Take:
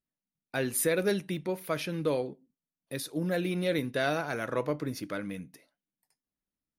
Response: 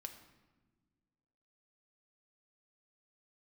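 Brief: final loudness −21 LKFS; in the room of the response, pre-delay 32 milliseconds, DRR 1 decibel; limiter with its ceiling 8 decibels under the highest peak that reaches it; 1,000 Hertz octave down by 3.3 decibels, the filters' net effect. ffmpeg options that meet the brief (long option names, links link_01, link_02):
-filter_complex "[0:a]equalizer=frequency=1000:width_type=o:gain=-5,alimiter=limit=-24dB:level=0:latency=1,asplit=2[link_01][link_02];[1:a]atrim=start_sample=2205,adelay=32[link_03];[link_02][link_03]afir=irnorm=-1:irlink=0,volume=3.5dB[link_04];[link_01][link_04]amix=inputs=2:normalize=0,volume=11.5dB"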